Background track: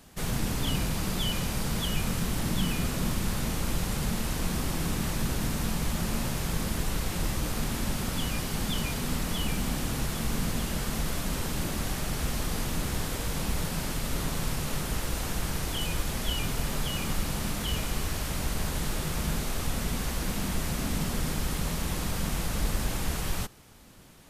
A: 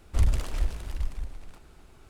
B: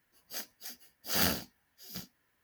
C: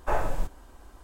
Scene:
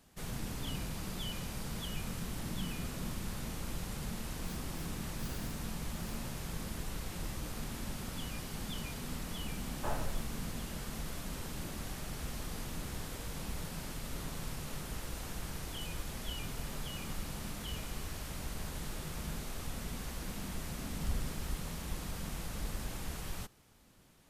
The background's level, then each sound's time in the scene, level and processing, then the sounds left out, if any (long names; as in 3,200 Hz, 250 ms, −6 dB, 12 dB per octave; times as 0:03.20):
background track −10.5 dB
0:04.13: mix in B −16 dB + downward compressor, threshold −32 dBFS
0:09.76: mix in C −11 dB
0:20.88: mix in A −14.5 dB